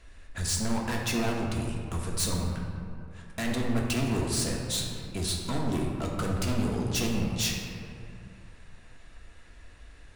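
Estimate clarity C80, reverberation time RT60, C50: 3.0 dB, 2.4 s, 1.5 dB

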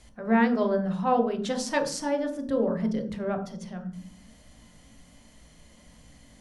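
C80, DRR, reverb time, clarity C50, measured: 14.5 dB, 4.0 dB, 0.40 s, 10.0 dB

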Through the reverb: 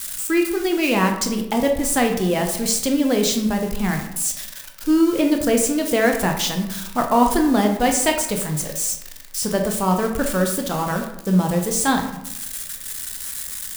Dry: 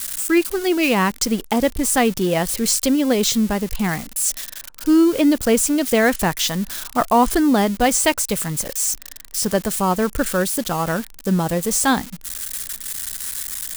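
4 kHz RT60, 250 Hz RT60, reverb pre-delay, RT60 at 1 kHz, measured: 0.50 s, 0.90 s, 15 ms, 0.80 s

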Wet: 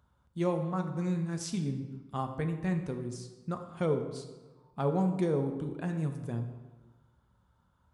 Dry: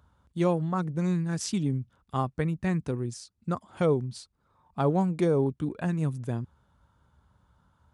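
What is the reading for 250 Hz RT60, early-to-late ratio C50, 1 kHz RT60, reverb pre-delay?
1.3 s, 8.5 dB, 1.2 s, 3 ms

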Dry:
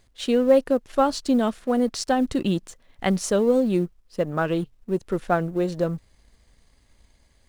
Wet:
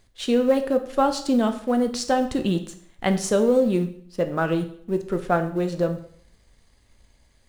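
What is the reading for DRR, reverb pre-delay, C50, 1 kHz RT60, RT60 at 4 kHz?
7.0 dB, 5 ms, 11.5 dB, 0.60 s, 0.55 s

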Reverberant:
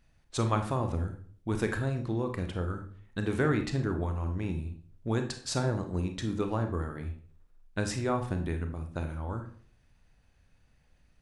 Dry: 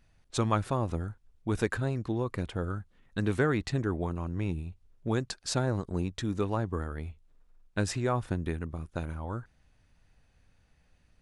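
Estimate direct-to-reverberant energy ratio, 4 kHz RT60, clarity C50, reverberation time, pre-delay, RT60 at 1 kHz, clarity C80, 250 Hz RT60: 5.5 dB, 0.35 s, 9.5 dB, 0.50 s, 28 ms, 0.45 s, 14.0 dB, 0.55 s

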